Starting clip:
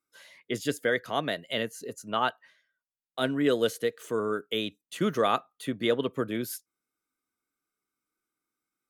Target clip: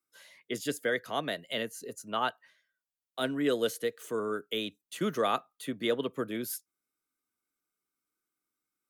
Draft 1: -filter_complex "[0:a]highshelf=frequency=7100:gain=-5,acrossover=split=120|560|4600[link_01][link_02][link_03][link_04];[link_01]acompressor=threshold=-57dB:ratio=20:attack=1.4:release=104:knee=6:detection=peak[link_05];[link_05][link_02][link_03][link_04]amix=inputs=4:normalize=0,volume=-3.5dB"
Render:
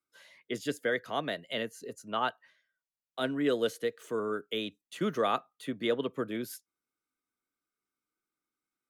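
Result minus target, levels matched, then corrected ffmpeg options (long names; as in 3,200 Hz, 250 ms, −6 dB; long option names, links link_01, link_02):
8,000 Hz band −6.0 dB
-filter_complex "[0:a]highshelf=frequency=7100:gain=5.5,acrossover=split=120|560|4600[link_01][link_02][link_03][link_04];[link_01]acompressor=threshold=-57dB:ratio=20:attack=1.4:release=104:knee=6:detection=peak[link_05];[link_05][link_02][link_03][link_04]amix=inputs=4:normalize=0,volume=-3.5dB"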